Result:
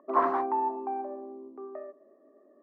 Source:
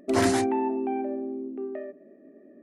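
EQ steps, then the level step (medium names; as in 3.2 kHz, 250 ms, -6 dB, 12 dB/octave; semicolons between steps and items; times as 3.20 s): high-pass 430 Hz 12 dB/octave; resonant low-pass 1.1 kHz, resonance Q 8.3; distance through air 61 m; -5.0 dB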